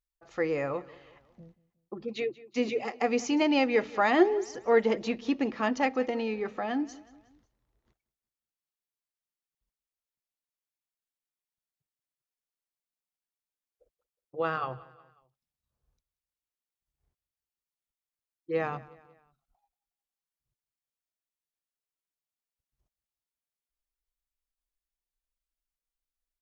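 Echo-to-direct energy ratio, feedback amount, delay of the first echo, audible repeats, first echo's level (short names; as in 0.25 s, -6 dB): -19.5 dB, 47%, 0.182 s, 3, -20.5 dB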